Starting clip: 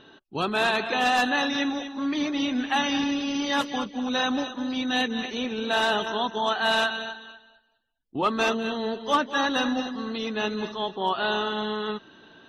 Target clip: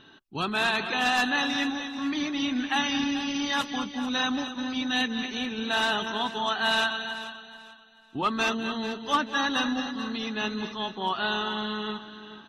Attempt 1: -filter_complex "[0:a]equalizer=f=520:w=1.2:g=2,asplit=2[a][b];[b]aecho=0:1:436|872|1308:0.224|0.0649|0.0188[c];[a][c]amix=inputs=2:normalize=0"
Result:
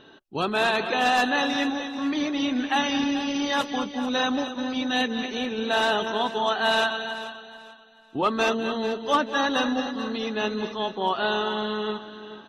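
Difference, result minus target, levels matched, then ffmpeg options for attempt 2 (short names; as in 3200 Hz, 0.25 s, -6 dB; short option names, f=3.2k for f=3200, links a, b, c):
500 Hz band +6.0 dB
-filter_complex "[0:a]equalizer=f=520:w=1.2:g=-8,asplit=2[a][b];[b]aecho=0:1:436|872|1308:0.224|0.0649|0.0188[c];[a][c]amix=inputs=2:normalize=0"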